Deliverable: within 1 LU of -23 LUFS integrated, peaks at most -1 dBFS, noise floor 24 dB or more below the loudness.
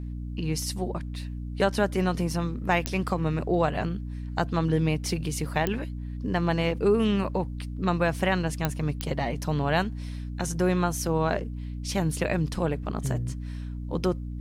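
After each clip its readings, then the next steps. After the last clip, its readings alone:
clicks 4; hum 60 Hz; harmonics up to 300 Hz; hum level -32 dBFS; loudness -28.0 LUFS; peak -8.5 dBFS; loudness target -23.0 LUFS
-> de-click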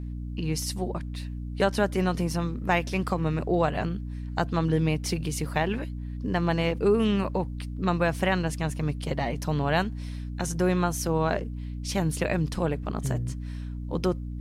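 clicks 0; hum 60 Hz; harmonics up to 300 Hz; hum level -32 dBFS
-> de-hum 60 Hz, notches 5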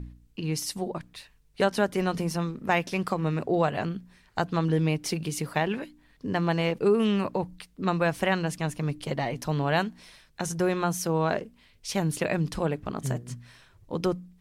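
hum none; loudness -28.5 LUFS; peak -10.5 dBFS; loudness target -23.0 LUFS
-> gain +5.5 dB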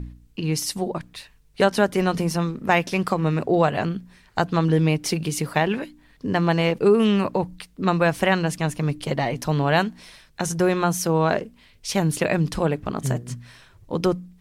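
loudness -23.0 LUFS; peak -5.0 dBFS; noise floor -55 dBFS

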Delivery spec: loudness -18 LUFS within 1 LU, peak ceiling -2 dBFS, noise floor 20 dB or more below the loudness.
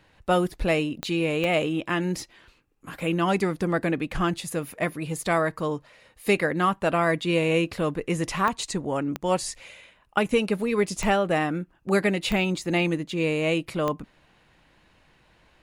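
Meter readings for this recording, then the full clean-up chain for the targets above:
clicks 7; loudness -25.5 LUFS; peak -10.5 dBFS; loudness target -18.0 LUFS
-> de-click; gain +7.5 dB

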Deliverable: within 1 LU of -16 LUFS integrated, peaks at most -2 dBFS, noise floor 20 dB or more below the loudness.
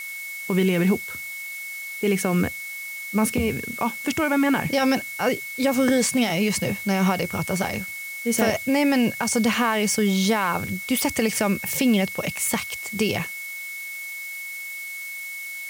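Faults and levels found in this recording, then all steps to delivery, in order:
steady tone 2200 Hz; tone level -32 dBFS; noise floor -34 dBFS; noise floor target -44 dBFS; loudness -23.5 LUFS; peak -8.0 dBFS; loudness target -16.0 LUFS
-> notch 2200 Hz, Q 30; noise print and reduce 10 dB; gain +7.5 dB; limiter -2 dBFS

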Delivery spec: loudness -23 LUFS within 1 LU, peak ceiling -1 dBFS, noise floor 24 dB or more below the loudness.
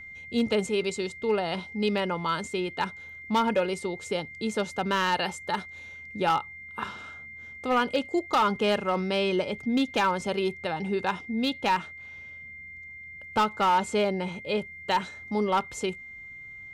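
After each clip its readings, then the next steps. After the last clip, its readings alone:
clipped 0.5%; flat tops at -17.5 dBFS; steady tone 2100 Hz; tone level -41 dBFS; loudness -28.0 LUFS; peak -17.5 dBFS; loudness target -23.0 LUFS
-> clip repair -17.5 dBFS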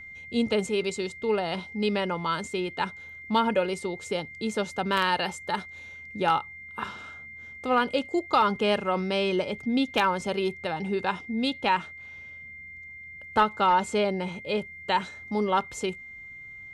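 clipped 0.0%; steady tone 2100 Hz; tone level -41 dBFS
-> notch 2100 Hz, Q 30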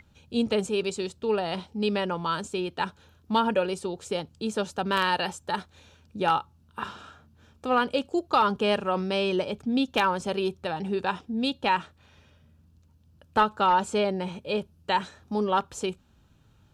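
steady tone none; loudness -27.5 LUFS; peak -9.0 dBFS; loudness target -23.0 LUFS
-> gain +4.5 dB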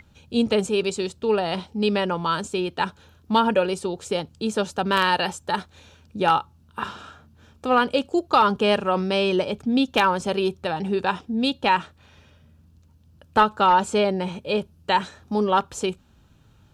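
loudness -23.0 LUFS; peak -4.5 dBFS; noise floor -56 dBFS

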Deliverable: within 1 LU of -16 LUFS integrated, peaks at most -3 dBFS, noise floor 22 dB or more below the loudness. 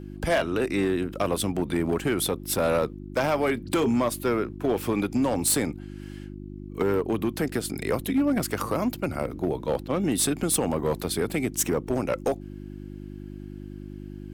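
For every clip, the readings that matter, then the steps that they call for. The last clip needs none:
clipped 1.3%; flat tops at -17.5 dBFS; hum 50 Hz; harmonics up to 350 Hz; hum level -37 dBFS; loudness -26.0 LUFS; peak -17.5 dBFS; loudness target -16.0 LUFS
-> clip repair -17.5 dBFS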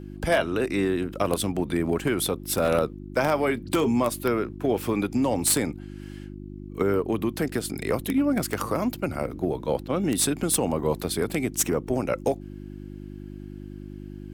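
clipped 0.0%; hum 50 Hz; harmonics up to 350 Hz; hum level -37 dBFS
-> de-hum 50 Hz, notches 7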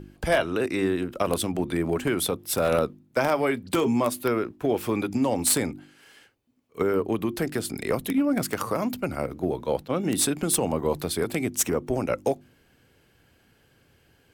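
hum none; loudness -26.0 LUFS; peak -8.0 dBFS; loudness target -16.0 LUFS
-> gain +10 dB; limiter -3 dBFS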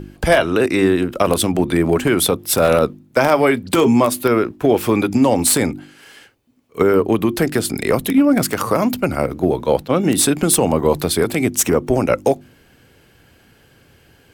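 loudness -16.5 LUFS; peak -3.0 dBFS; noise floor -52 dBFS

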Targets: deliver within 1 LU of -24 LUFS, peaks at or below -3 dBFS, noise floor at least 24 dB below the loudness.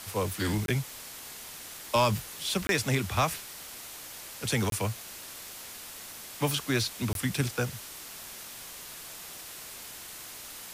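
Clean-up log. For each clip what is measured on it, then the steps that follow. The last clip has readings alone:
dropouts 4; longest dropout 22 ms; noise floor -44 dBFS; noise floor target -57 dBFS; loudness -32.5 LUFS; peak -13.0 dBFS; loudness target -24.0 LUFS
-> interpolate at 0.66/2.67/4.7/7.13, 22 ms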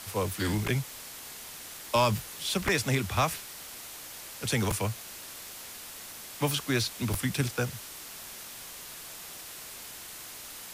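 dropouts 0; noise floor -44 dBFS; noise floor target -57 dBFS
-> denoiser 13 dB, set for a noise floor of -44 dBFS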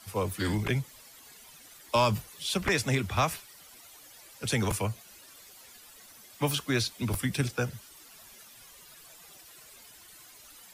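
noise floor -53 dBFS; noise floor target -54 dBFS
-> denoiser 6 dB, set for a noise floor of -53 dBFS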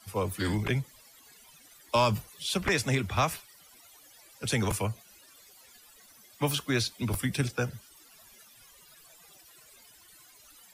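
noise floor -57 dBFS; loudness -30.0 LUFS; peak -13.0 dBFS; loudness target -24.0 LUFS
-> gain +6 dB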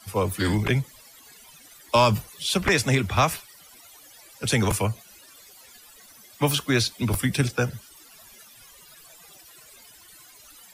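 loudness -24.0 LUFS; peak -7.0 dBFS; noise floor -51 dBFS

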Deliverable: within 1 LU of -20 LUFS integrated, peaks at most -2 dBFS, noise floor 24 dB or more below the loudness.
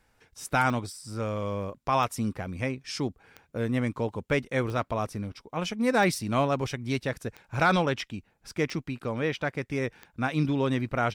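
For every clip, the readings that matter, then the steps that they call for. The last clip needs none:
clicks 8; loudness -29.0 LUFS; peak -13.0 dBFS; loudness target -20.0 LUFS
-> de-click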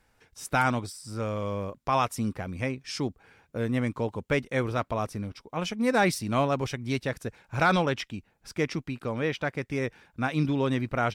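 clicks 0; loudness -29.0 LUFS; peak -13.0 dBFS; loudness target -20.0 LUFS
-> gain +9 dB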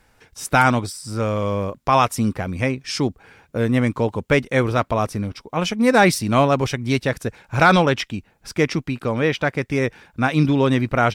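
loudness -20.0 LUFS; peak -4.0 dBFS; noise floor -60 dBFS

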